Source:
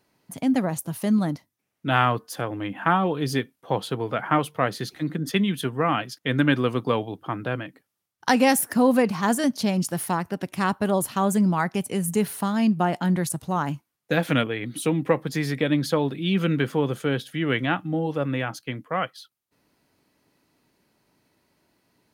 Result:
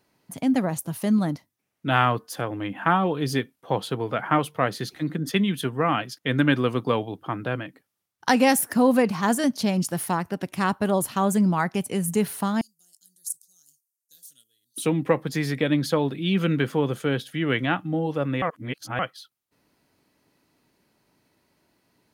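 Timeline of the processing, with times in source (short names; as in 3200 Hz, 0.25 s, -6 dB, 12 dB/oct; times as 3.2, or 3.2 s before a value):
12.61–14.78 inverse Chebyshev high-pass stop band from 2500 Hz, stop band 50 dB
18.42–18.99 reverse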